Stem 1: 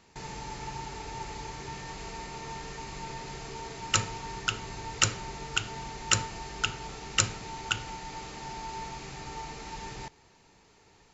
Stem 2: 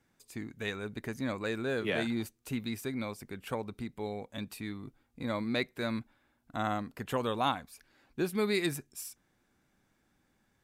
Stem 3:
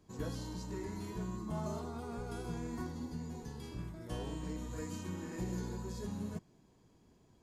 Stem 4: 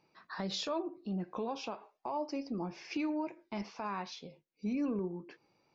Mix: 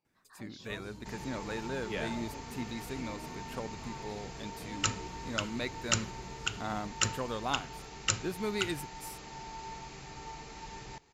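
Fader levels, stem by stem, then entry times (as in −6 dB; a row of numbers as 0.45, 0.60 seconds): −5.0, −4.5, −8.5, −15.0 decibels; 0.90, 0.05, 0.50, 0.00 seconds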